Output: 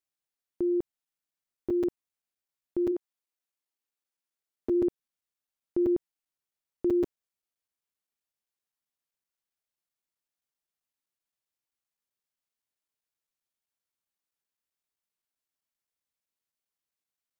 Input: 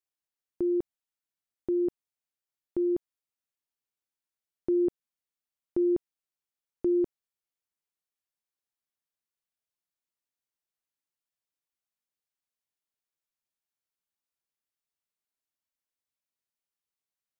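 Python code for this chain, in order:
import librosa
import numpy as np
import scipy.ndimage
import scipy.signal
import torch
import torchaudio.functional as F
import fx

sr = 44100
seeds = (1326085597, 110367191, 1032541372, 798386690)

y = fx.highpass(x, sr, hz=fx.line((2.91, 350.0), (4.73, 150.0)), slope=12, at=(2.91, 4.73), fade=0.02)
y = fx.buffer_crackle(y, sr, first_s=0.92, period_s=0.13, block=256, kind='zero')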